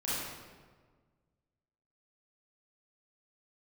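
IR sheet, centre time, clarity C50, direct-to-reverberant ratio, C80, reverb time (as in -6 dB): 0.111 s, -4.0 dB, -10.5 dB, 0.0 dB, 1.5 s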